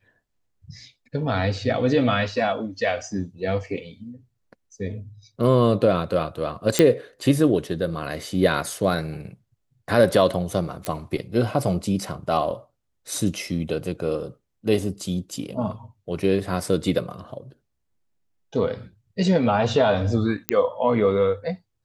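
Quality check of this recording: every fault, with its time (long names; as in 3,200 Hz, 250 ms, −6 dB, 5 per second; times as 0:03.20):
0:06.79: click −3 dBFS
0:10.85: click −12 dBFS
0:20.49: click −4 dBFS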